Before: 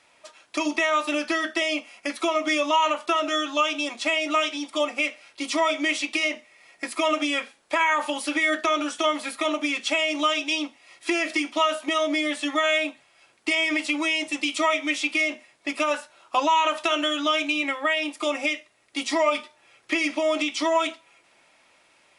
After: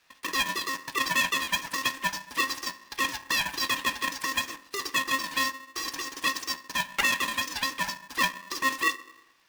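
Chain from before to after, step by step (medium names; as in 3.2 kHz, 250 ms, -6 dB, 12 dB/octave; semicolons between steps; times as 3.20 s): median filter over 15 samples; high-pass 420 Hz 24 dB/octave; wide varispeed 2.34×; on a send at -9.5 dB: reverberation RT60 1.0 s, pre-delay 3 ms; on the sum: polarity switched at an audio rate 400 Hz; trim -2 dB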